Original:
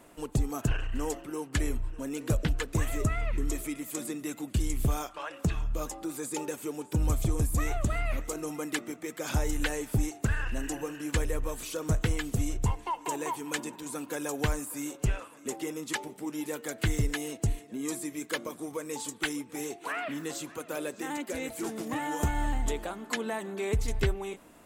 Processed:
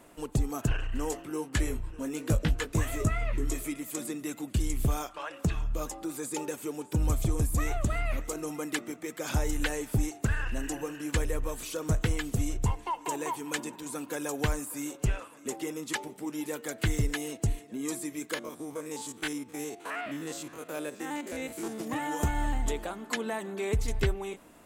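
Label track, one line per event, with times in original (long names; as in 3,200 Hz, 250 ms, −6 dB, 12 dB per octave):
1.100000	3.720000	double-tracking delay 19 ms −7 dB
18.340000	21.800000	spectrum averaged block by block every 50 ms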